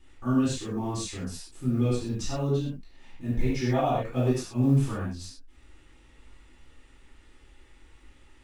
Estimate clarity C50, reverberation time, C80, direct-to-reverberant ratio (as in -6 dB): 0.0 dB, not exponential, 3.5 dB, -10.0 dB